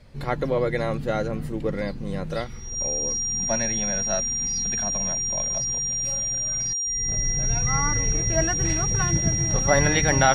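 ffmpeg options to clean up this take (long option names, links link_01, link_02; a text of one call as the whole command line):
ffmpeg -i in.wav -af "bandreject=frequency=5700:width=30" out.wav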